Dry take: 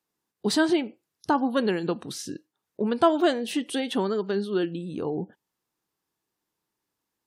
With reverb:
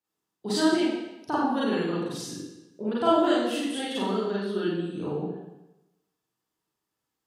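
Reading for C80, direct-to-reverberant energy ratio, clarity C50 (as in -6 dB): 2.0 dB, -8.5 dB, -1.0 dB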